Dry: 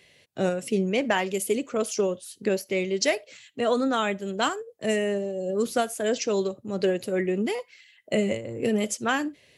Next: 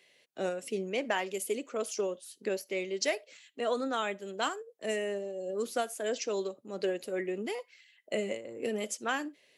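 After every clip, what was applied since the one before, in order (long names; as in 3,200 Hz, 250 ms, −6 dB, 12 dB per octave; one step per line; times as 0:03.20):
high-pass filter 290 Hz 12 dB per octave
level −6.5 dB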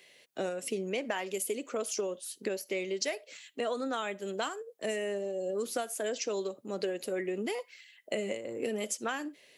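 high-shelf EQ 9,700 Hz +5 dB
downward compressor 4 to 1, threshold −36 dBFS, peak gain reduction 10 dB
level +5 dB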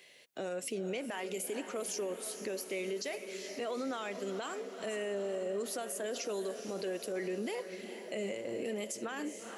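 feedback delay with all-pass diffusion 456 ms, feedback 60%, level −12.5 dB
brickwall limiter −29 dBFS, peak gain reduction 10.5 dB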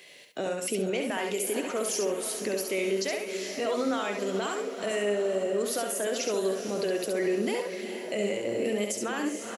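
repeating echo 68 ms, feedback 22%, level −4.5 dB
level +7 dB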